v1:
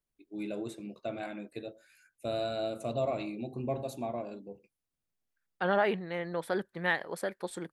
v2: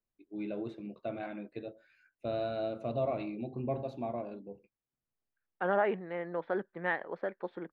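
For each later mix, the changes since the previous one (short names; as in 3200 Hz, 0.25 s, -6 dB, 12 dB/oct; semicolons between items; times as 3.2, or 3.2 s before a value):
second voice: add BPF 220–2300 Hz; master: add air absorption 280 m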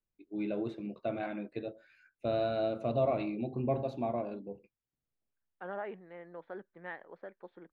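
first voice +3.0 dB; second voice -11.0 dB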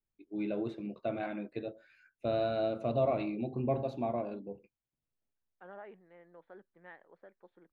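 second voice -9.0 dB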